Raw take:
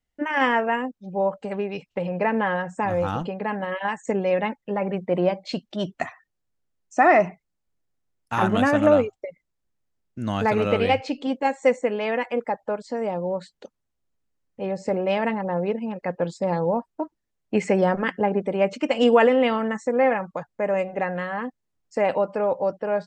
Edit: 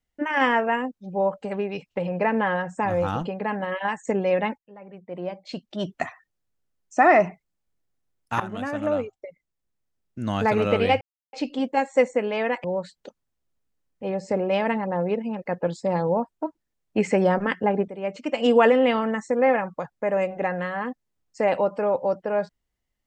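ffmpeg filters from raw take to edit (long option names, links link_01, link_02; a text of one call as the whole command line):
ffmpeg -i in.wav -filter_complex "[0:a]asplit=6[link_01][link_02][link_03][link_04][link_05][link_06];[link_01]atrim=end=4.58,asetpts=PTS-STARTPTS,afade=type=out:start_time=4.576:duration=0.004:curve=hsin:silence=0.0891251[link_07];[link_02]atrim=start=4.58:end=8.4,asetpts=PTS-STARTPTS,afade=type=in:duration=1.36:curve=qua:silence=0.0891251,afade=type=out:start_time=3.816:duration=0.004:curve=hsin:silence=0.199526[link_08];[link_03]atrim=start=8.4:end=11.01,asetpts=PTS-STARTPTS,afade=type=in:duration=1.95:silence=0.199526,afade=type=out:start_time=2.606:duration=0.004:curve=hsin,apad=pad_dur=0.32[link_09];[link_04]atrim=start=11.01:end=12.322,asetpts=PTS-STARTPTS,afade=type=in:duration=0.004:curve=hsin[link_10];[link_05]atrim=start=13.208:end=18.45,asetpts=PTS-STARTPTS,afade=type=out:start_time=5.238:duration=0.004:curve=hsin:silence=0.223872[link_11];[link_06]atrim=start=18.45,asetpts=PTS-STARTPTS,afade=type=in:duration=0.75:silence=0.223872[link_12];[link_07][link_08][link_09][link_10]concat=n=4:v=0:a=1[link_13];[link_11][link_12]concat=n=2:v=0:a=1[link_14];[link_13][link_14]acrossfade=duration=0.004:curve1=hsin:curve2=hsin" out.wav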